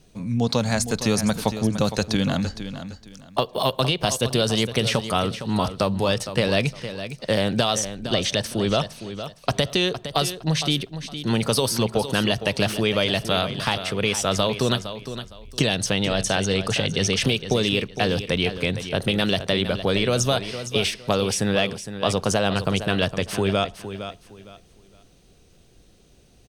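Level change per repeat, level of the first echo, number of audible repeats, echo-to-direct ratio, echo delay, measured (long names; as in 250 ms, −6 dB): −12.0 dB, −11.0 dB, 2, −10.5 dB, 461 ms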